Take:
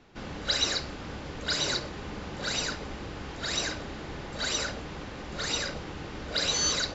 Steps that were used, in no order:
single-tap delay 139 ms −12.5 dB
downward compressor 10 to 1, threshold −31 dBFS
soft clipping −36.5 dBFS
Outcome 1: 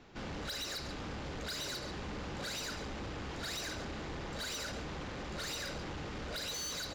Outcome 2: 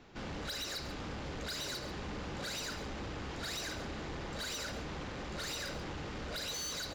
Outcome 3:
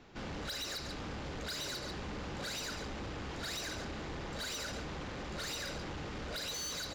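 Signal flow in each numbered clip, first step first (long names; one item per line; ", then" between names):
downward compressor, then single-tap delay, then soft clipping
downward compressor, then soft clipping, then single-tap delay
single-tap delay, then downward compressor, then soft clipping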